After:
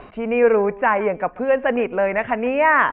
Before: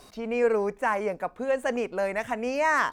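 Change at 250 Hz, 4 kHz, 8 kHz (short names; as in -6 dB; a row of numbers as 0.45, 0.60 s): +8.0 dB, n/a, under -35 dB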